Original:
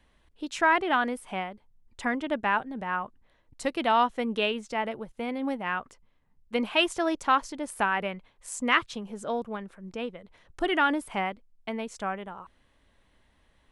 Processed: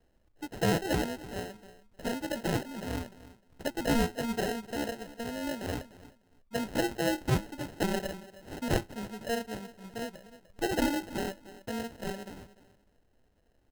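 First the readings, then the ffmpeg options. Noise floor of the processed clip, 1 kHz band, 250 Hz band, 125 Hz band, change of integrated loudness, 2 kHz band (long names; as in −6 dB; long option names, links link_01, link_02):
−69 dBFS, −11.0 dB, −1.0 dB, +10.5 dB, −5.0 dB, −9.5 dB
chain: -filter_complex "[0:a]flanger=delay=8.6:depth=1:regen=77:speed=1.6:shape=sinusoidal,asplit=2[link_01][link_02];[link_02]adelay=301,lowpass=frequency=1600:poles=1,volume=-15.5dB,asplit=2[link_03][link_04];[link_04]adelay=301,lowpass=frequency=1600:poles=1,volume=0.22[link_05];[link_01][link_03][link_05]amix=inputs=3:normalize=0,acrusher=samples=38:mix=1:aa=0.000001"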